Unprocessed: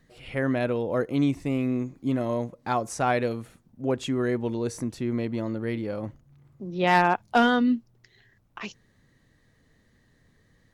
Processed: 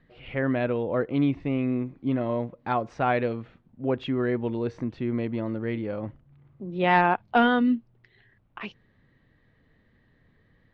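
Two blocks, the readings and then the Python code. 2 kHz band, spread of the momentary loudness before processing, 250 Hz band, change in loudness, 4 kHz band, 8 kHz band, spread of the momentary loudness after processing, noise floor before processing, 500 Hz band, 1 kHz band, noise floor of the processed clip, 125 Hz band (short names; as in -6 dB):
0.0 dB, 14 LU, 0.0 dB, 0.0 dB, -2.5 dB, under -20 dB, 14 LU, -64 dBFS, 0.0 dB, 0.0 dB, -64 dBFS, 0.0 dB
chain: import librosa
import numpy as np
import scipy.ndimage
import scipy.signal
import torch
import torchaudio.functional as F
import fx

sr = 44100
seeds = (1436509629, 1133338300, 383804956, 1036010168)

y = scipy.signal.sosfilt(scipy.signal.butter(4, 3400.0, 'lowpass', fs=sr, output='sos'), x)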